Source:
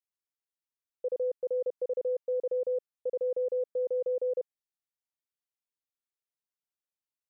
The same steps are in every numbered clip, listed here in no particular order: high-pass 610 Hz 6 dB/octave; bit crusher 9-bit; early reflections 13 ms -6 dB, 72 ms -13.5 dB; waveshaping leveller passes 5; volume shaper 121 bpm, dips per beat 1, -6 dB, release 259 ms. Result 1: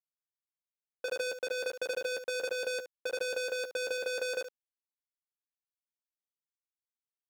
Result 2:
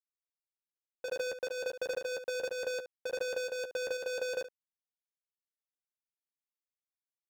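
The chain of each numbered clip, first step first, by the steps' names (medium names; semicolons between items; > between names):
volume shaper > waveshaping leveller > early reflections > bit crusher > high-pass; high-pass > waveshaping leveller > bit crusher > early reflections > volume shaper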